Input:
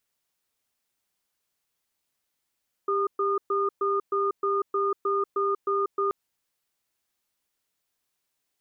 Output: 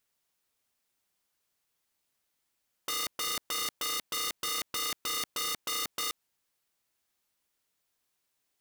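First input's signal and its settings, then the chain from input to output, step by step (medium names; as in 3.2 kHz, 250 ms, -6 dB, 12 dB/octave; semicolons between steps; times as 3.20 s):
cadence 397 Hz, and 1.22 kHz, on 0.19 s, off 0.12 s, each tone -25 dBFS 3.23 s
integer overflow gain 27 dB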